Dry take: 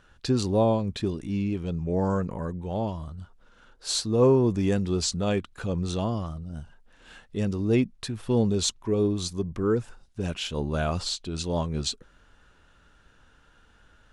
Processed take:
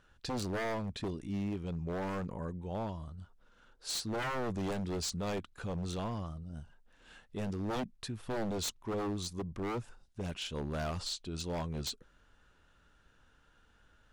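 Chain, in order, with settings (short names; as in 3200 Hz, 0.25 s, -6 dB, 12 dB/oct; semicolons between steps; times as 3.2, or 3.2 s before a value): wavefolder -22.5 dBFS; gain -7.5 dB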